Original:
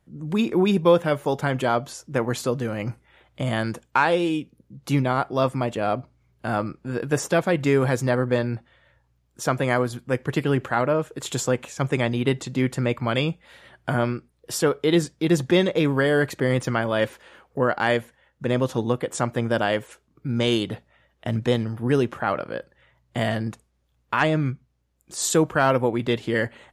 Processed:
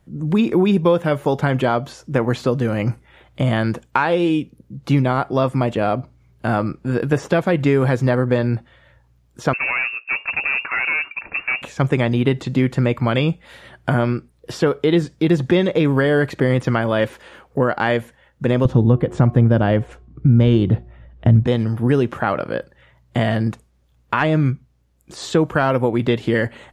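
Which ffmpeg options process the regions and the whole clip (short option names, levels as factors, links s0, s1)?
-filter_complex "[0:a]asettb=1/sr,asplit=3[s0][s1][s2];[s0]atrim=end=9.534[s3];[s1]atrim=start=9.53:end=11.62,asetpts=PTS-STARTPTS,afade=t=in:d=0.004:c=qsin,afade=t=out:st=2.086:d=0.004:c=qsin,volume=14.1,asoftclip=hard,volume=0.0708,lowpass=f=2400:t=q:w=0.5098,lowpass=f=2400:t=q:w=0.6013,lowpass=f=2400:t=q:w=0.9,lowpass=f=2400:t=q:w=2.563,afreqshift=-2800[s4];[s2]atrim=start=11.616[s5];[s3][s4]acrossfade=d=0.004:c1=hsin:c2=qsin[s6];[s6][s5]acrossfade=d=0.004:c1=qsin:c2=hsin,asettb=1/sr,asplit=3[s7][s8][s9];[s7]atrim=end=18.654[s10];[s8]atrim=start=18.65:end=21.47,asetpts=PTS-STARTPTS,afade=t=in:d=0.004:c=qsin,afade=t=out:st=2.816:d=0.004:c=qsin,aemphasis=mode=reproduction:type=riaa,bandreject=f=360.5:t=h:w=4,bandreject=f=721:t=h:w=4,bandreject=f=1081.5:t=h:w=4[s11];[s9]atrim=start=21.466[s12];[s10][s11]acrossfade=d=0.004:c1=hsin:c2=qsin[s13];[s13][s12]acrossfade=d=0.004:c1=qsin:c2=hsin,acompressor=threshold=0.0794:ratio=2.5,lowshelf=f=330:g=4,acrossover=split=4300[s14][s15];[s15]acompressor=threshold=0.00224:ratio=4:attack=1:release=60[s16];[s14][s16]amix=inputs=2:normalize=0,volume=2"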